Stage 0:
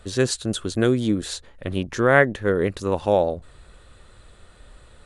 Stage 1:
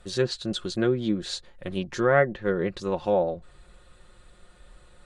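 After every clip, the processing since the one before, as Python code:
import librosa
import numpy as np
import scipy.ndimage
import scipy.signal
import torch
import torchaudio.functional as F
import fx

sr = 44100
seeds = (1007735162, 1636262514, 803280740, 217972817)

y = fx.env_lowpass_down(x, sr, base_hz=1800.0, full_db=-14.0)
y = y + 0.54 * np.pad(y, (int(5.6 * sr / 1000.0), 0))[:len(y)]
y = fx.dynamic_eq(y, sr, hz=4300.0, q=2.1, threshold_db=-45.0, ratio=4.0, max_db=6)
y = y * 10.0 ** (-5.5 / 20.0)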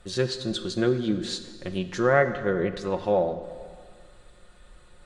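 y = fx.rev_plate(x, sr, seeds[0], rt60_s=1.9, hf_ratio=0.85, predelay_ms=0, drr_db=9.5)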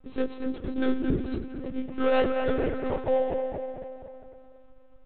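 y = scipy.ndimage.median_filter(x, 25, mode='constant')
y = fx.echo_bbd(y, sr, ms=232, stages=4096, feedback_pct=53, wet_db=-6)
y = fx.lpc_monotone(y, sr, seeds[1], pitch_hz=260.0, order=16)
y = y * 10.0 ** (-1.5 / 20.0)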